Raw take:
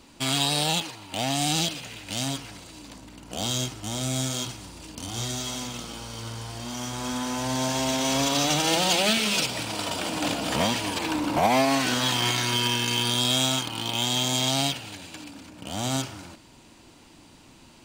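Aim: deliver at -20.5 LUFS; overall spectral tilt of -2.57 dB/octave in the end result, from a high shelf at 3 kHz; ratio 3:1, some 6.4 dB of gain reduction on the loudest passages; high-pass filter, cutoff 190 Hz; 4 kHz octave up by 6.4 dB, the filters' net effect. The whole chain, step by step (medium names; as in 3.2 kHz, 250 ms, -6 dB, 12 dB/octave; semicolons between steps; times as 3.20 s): high-pass 190 Hz; treble shelf 3 kHz +3.5 dB; peaking EQ 4 kHz +5.5 dB; compression 3:1, threshold -23 dBFS; trim +4.5 dB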